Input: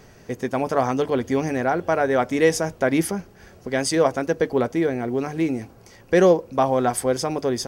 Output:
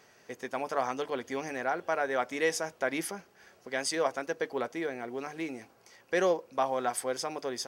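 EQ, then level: HPF 960 Hz 6 dB/oct; high shelf 6000 Hz -4.5 dB; -4.5 dB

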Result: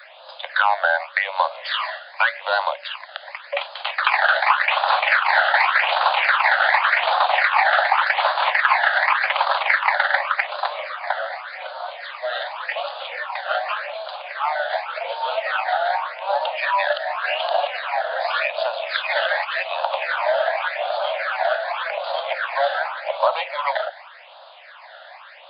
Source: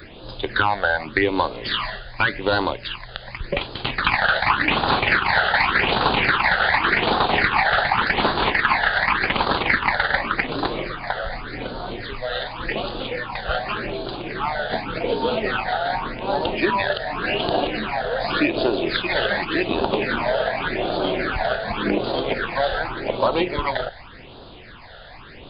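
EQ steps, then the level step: steep high-pass 560 Hz 96 dB/oct; high shelf 4400 Hz -11.5 dB; +3.0 dB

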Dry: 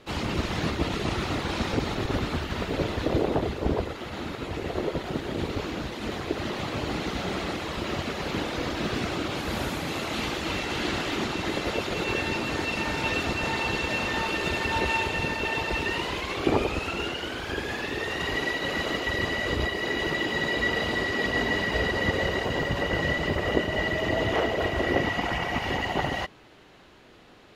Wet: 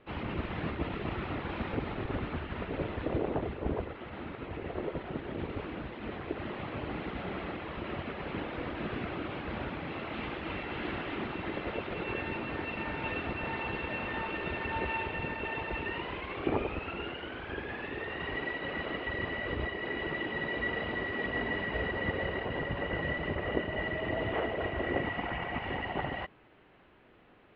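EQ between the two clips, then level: inverse Chebyshev low-pass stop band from 8600 Hz, stop band 60 dB; -7.0 dB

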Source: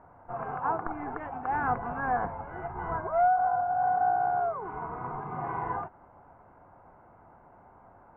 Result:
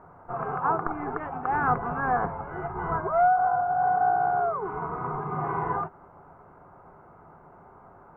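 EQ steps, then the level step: thirty-one-band EQ 160 Hz +8 dB, 400 Hz +8 dB, 1250 Hz +7 dB; +2.0 dB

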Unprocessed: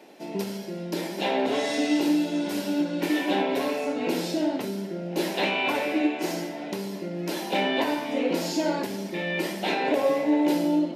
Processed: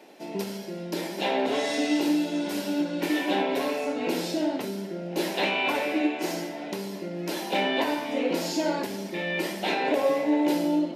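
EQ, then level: low shelf 220 Hz -4 dB; 0.0 dB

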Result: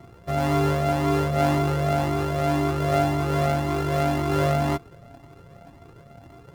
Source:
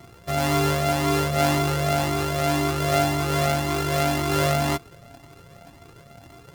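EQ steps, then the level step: high shelf 2100 Hz -11.5 dB; +1.0 dB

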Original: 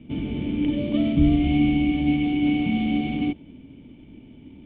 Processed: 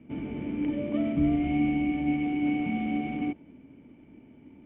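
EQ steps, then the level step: LPF 2100 Hz 24 dB/oct; low shelf 69 Hz -8.5 dB; low shelf 390 Hz -8 dB; 0.0 dB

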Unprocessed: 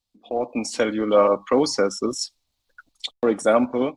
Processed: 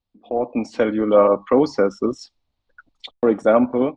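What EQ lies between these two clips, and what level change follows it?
tape spacing loss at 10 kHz 30 dB; +4.5 dB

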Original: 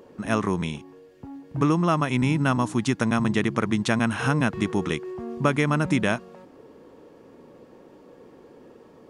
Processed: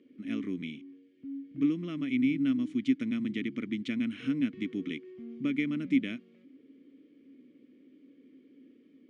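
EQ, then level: vowel filter i; notch 1600 Hz, Q 15; +1.5 dB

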